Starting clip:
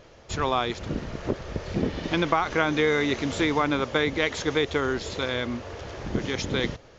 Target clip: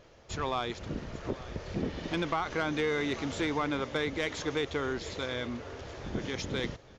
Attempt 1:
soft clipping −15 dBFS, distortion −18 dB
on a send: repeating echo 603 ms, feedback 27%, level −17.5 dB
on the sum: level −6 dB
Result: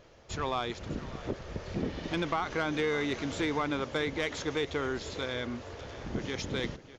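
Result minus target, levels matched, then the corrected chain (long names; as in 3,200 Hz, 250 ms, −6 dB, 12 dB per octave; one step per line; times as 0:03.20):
echo 239 ms early
soft clipping −15 dBFS, distortion −18 dB
on a send: repeating echo 842 ms, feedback 27%, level −17.5 dB
on the sum: level −6 dB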